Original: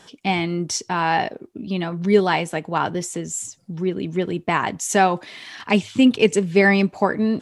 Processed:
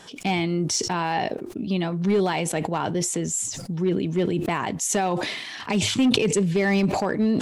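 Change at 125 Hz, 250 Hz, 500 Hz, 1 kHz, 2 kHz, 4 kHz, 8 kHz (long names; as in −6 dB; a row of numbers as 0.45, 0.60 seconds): 0.0, −2.5, −4.0, −5.5, −6.5, +0.5, +2.5 decibels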